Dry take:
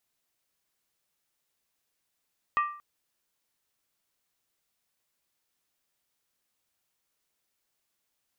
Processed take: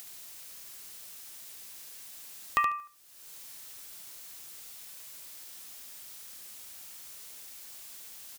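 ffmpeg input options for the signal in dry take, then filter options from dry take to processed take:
-f lavfi -i "aevalsrc='0.1*pow(10,-3*t/0.49)*sin(2*PI*1180*t)+0.0398*pow(10,-3*t/0.388)*sin(2*PI*1880.9*t)+0.0158*pow(10,-3*t/0.335)*sin(2*PI*2520.5*t)+0.00631*pow(10,-3*t/0.323)*sin(2*PI*2709.3*t)+0.00251*pow(10,-3*t/0.301)*sin(2*PI*3130.5*t)':d=0.23:s=44100"
-filter_complex "[0:a]highshelf=f=3k:g=9.5,acompressor=mode=upward:threshold=-28dB:ratio=2.5,asplit=2[a][b];[b]aecho=0:1:73|146|219:0.473|0.0804|0.0137[c];[a][c]amix=inputs=2:normalize=0"

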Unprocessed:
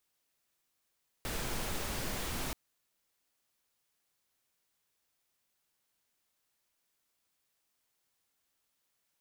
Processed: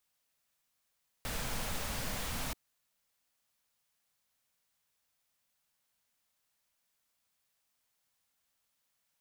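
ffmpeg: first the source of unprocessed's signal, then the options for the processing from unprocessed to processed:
-f lavfi -i "anoisesrc=c=pink:a=0.0767:d=1.28:r=44100:seed=1"
-af "equalizer=f=360:t=o:w=0.32:g=-13"

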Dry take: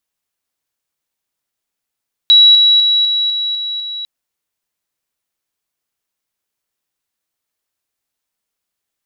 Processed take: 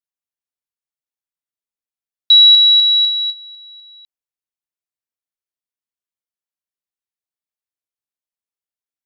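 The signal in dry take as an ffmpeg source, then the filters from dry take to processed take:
-f lavfi -i "aevalsrc='pow(10,(-3.5-3*floor(t/0.25))/20)*sin(2*PI*3900*t)':d=1.75:s=44100"
-af "agate=range=-17dB:threshold=-16dB:ratio=16:detection=peak"

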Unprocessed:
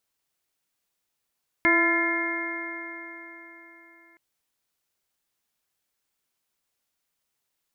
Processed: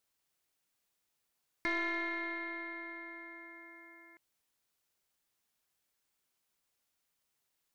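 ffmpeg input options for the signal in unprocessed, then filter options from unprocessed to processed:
-f lavfi -i "aevalsrc='0.0708*pow(10,-3*t/3.95)*sin(2*PI*333.6*t)+0.0335*pow(10,-3*t/3.95)*sin(2*PI*670.78*t)+0.0447*pow(10,-3*t/3.95)*sin(2*PI*1015.05*t)+0.0316*pow(10,-3*t/3.95)*sin(2*PI*1369.82*t)+0.0708*pow(10,-3*t/3.95)*sin(2*PI*1738.31*t)+0.112*pow(10,-3*t/3.95)*sin(2*PI*2123.53*t)':d=2.52:s=44100"
-af "acompressor=threshold=-49dB:ratio=1.5,aeval=exprs='(tanh(17.8*val(0)+0.5)-tanh(0.5))/17.8':c=same"

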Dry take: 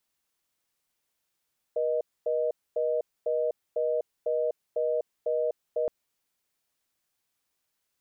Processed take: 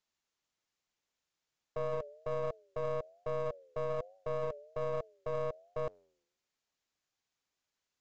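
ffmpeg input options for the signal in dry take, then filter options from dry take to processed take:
-f lavfi -i "aevalsrc='0.0447*(sin(2*PI*480*t)+sin(2*PI*620*t))*clip(min(mod(t,0.5),0.25-mod(t,0.5))/0.005,0,1)':d=4.12:s=44100"
-af "flanger=delay=9.7:depth=3.3:regen=-89:speed=1.2:shape=triangular,aresample=16000,aeval=exprs='clip(val(0),-1,0.00841)':c=same,aresample=44100"

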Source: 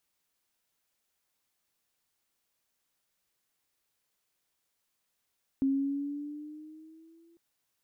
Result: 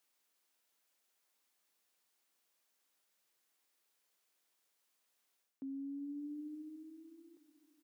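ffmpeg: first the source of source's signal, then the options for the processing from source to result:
-f lavfi -i "aevalsrc='pow(10,(-23-36*t/1.75)/20)*sin(2*PI*269*1.75/(4*log(2)/12)*(exp(4*log(2)/12*t/1.75)-1))':d=1.75:s=44100"
-af "highpass=250,areverse,acompressor=threshold=-42dB:ratio=10,areverse,aecho=1:1:368|736|1104|1472|1840:0.112|0.0651|0.0377|0.0219|0.0127"

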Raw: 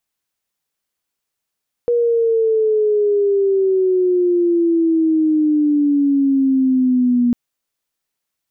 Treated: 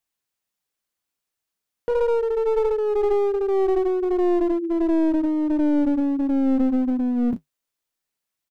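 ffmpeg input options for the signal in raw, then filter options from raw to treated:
-f lavfi -i "aevalsrc='pow(10,(-12.5+1*t/5.45)/20)*sin(2*PI*480*5.45/log(240/480)*(exp(log(240/480)*t/5.45)-1))':d=5.45:s=44100"
-filter_complex "[0:a]asplit=2[a][b];[b]adelay=34,volume=-11.5dB[c];[a][c]amix=inputs=2:normalize=0,flanger=delay=2.4:depth=8.2:regen=-56:speed=1.4:shape=sinusoidal,aeval=exprs='clip(val(0),-1,0.0794)':c=same"

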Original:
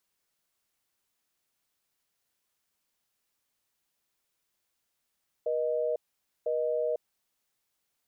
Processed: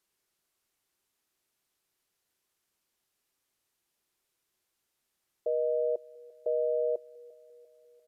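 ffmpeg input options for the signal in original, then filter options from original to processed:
-f lavfi -i "aevalsrc='0.0355*(sin(2*PI*480*t)+sin(2*PI*620*t))*clip(min(mod(t,1),0.5-mod(t,1))/0.005,0,1)':d=1.62:s=44100"
-af "aecho=1:1:346|692|1038|1384:0.0708|0.0411|0.0238|0.0138,aresample=32000,aresample=44100,equalizer=f=370:w=4.9:g=7"

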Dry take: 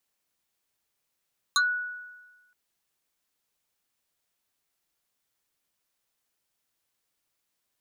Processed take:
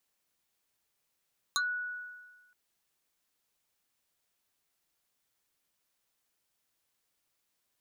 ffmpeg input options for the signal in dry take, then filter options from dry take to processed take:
-f lavfi -i "aevalsrc='0.126*pow(10,-3*t/1.25)*sin(2*PI*1470*t+2.9*pow(10,-3*t/0.13)*sin(2*PI*1.78*1470*t))':d=0.97:s=44100"
-af "acompressor=threshold=-36dB:ratio=2"

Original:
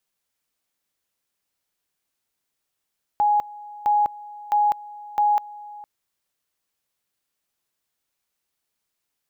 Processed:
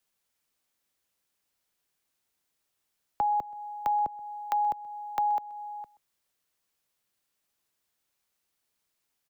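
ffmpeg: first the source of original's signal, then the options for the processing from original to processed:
-f lavfi -i "aevalsrc='pow(10,(-15.5-20.5*gte(mod(t,0.66),0.2))/20)*sin(2*PI*832*t)':d=2.64:s=44100"
-filter_complex "[0:a]acrossover=split=130|300|580[a][b][c][d];[d]acompressor=threshold=-32dB:ratio=5[e];[a][b][c][e]amix=inputs=4:normalize=0,asplit=2[f][g];[g]adelay=128.3,volume=-22dB,highshelf=f=4k:g=-2.89[h];[f][h]amix=inputs=2:normalize=0"

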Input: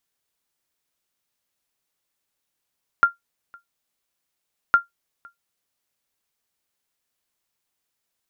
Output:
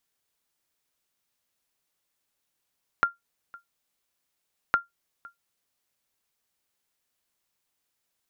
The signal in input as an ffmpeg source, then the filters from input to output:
-f lavfi -i "aevalsrc='0.501*(sin(2*PI*1390*mod(t,1.71))*exp(-6.91*mod(t,1.71)/0.14)+0.0335*sin(2*PI*1390*max(mod(t,1.71)-0.51,0))*exp(-6.91*max(mod(t,1.71)-0.51,0)/0.14))':d=3.42:s=44100"
-filter_complex "[0:a]acrossover=split=800[a][b];[b]acompressor=threshold=-24dB:ratio=6[c];[a][c]amix=inputs=2:normalize=0"

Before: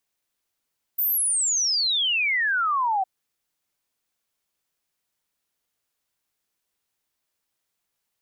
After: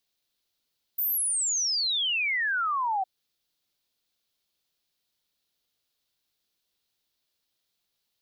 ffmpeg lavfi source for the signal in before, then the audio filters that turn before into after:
-f lavfi -i "aevalsrc='0.1*clip(min(t,2.06-t)/0.01,0,1)*sin(2*PI*15000*2.06/log(740/15000)*(exp(log(740/15000)*t/2.06)-1))':d=2.06:s=44100"
-af "equalizer=f=1k:t=o:w=1:g=-4,equalizer=f=2k:t=o:w=1:g=-4,equalizer=f=4k:t=o:w=1:g=9,equalizer=f=8k:t=o:w=1:g=-5,alimiter=limit=-24dB:level=0:latency=1:release=184"

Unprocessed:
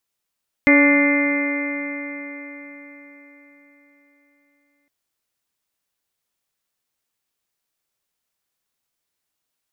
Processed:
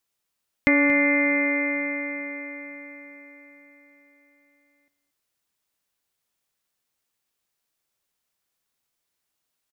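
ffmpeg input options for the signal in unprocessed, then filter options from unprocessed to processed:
-f lavfi -i "aevalsrc='0.237*pow(10,-3*t/4.44)*sin(2*PI*284.28*t)+0.119*pow(10,-3*t/4.44)*sin(2*PI*570.27*t)+0.0355*pow(10,-3*t/4.44)*sin(2*PI*859.63*t)+0.0398*pow(10,-3*t/4.44)*sin(2*PI*1154.03*t)+0.0335*pow(10,-3*t/4.44)*sin(2*PI*1455.07*t)+0.0668*pow(10,-3*t/4.44)*sin(2*PI*1764.28*t)+0.237*pow(10,-3*t/4.44)*sin(2*PI*2083.14*t)+0.0422*pow(10,-3*t/4.44)*sin(2*PI*2413.03*t)':d=4.21:s=44100"
-af "acompressor=threshold=-18dB:ratio=2.5,aecho=1:1:230:0.15"

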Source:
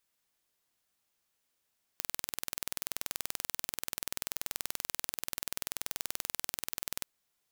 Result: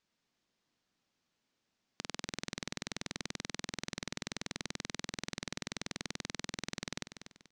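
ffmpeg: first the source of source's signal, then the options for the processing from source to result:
-f lavfi -i "aevalsrc='0.473*eq(mod(n,2130),0)':d=5.06:s=44100"
-filter_complex "[0:a]lowpass=f=6.2k:w=0.5412,lowpass=f=6.2k:w=1.3066,equalizer=f=210:w=0.87:g=10,asplit=2[a][b];[b]aecho=0:1:241|482|723|964:0.316|0.104|0.0344|0.0114[c];[a][c]amix=inputs=2:normalize=0"

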